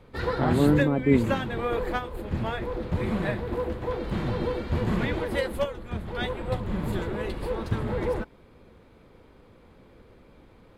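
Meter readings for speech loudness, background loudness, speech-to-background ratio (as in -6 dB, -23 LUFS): -24.5 LUFS, -29.5 LUFS, 5.0 dB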